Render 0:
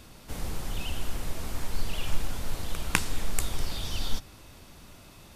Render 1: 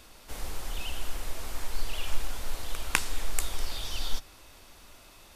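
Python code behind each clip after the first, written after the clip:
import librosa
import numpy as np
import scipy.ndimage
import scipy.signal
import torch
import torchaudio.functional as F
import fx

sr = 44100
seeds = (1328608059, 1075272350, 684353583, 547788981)

y = fx.peak_eq(x, sr, hz=140.0, db=-13.0, octaves=2.0)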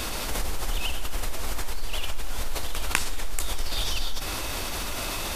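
y = fx.env_flatten(x, sr, amount_pct=70)
y = y * 10.0 ** (-4.5 / 20.0)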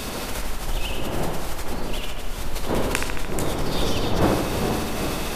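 y = fx.dmg_wind(x, sr, seeds[0], corner_hz=530.0, level_db=-29.0)
y = fx.echo_wet_lowpass(y, sr, ms=74, feedback_pct=67, hz=3100.0, wet_db=-4.0)
y = y * 10.0 ** (-1.0 / 20.0)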